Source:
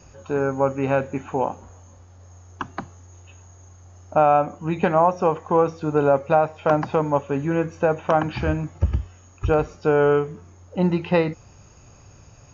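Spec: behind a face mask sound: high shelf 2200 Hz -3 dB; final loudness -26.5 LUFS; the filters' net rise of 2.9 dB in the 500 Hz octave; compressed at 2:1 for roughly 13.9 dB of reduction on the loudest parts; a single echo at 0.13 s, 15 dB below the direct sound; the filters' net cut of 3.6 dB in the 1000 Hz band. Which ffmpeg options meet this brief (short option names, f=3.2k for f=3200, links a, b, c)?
-af "equalizer=f=500:t=o:g=5.5,equalizer=f=1k:t=o:g=-7.5,acompressor=threshold=-38dB:ratio=2,highshelf=f=2.2k:g=-3,aecho=1:1:130:0.178,volume=6.5dB"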